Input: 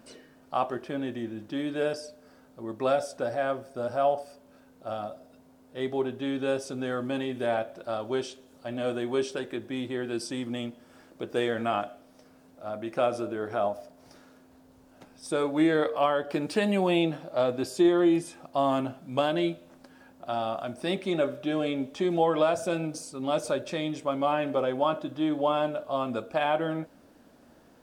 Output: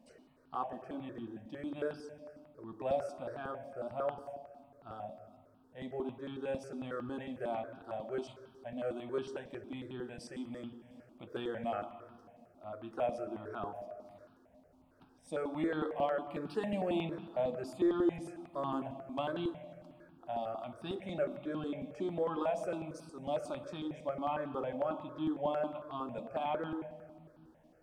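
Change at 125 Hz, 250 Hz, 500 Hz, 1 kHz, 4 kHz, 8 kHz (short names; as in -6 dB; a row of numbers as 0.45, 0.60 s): -9.0 dB, -9.5 dB, -9.5 dB, -9.0 dB, -14.0 dB, under -15 dB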